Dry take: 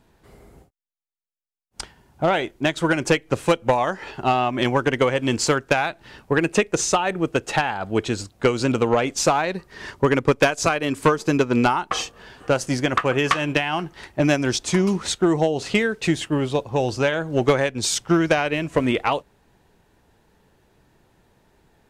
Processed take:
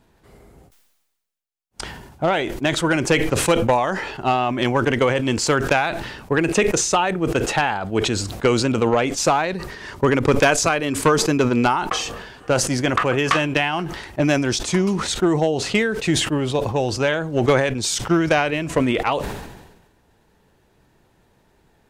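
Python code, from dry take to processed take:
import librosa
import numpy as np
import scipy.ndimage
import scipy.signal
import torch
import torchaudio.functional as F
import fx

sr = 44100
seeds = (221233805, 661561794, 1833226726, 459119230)

y = fx.sustainer(x, sr, db_per_s=50.0)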